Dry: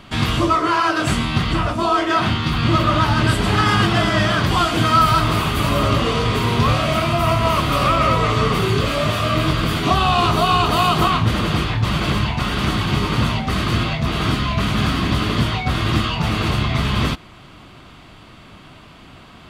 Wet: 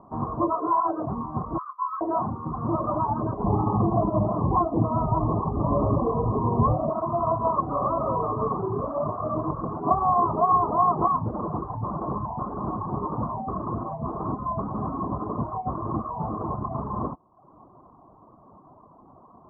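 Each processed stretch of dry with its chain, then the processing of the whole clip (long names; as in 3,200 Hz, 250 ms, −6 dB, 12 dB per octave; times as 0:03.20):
0:01.58–0:02.01: linear-phase brick-wall high-pass 1,000 Hz + parametric band 3,800 Hz +9.5 dB 1.2 octaves
0:03.44–0:06.90: Butterworth low-pass 1,200 Hz + spectral tilt −2.5 dB per octave
whole clip: Chebyshev low-pass filter 1,100 Hz, order 6; reverb reduction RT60 0.72 s; spectral tilt +3.5 dB per octave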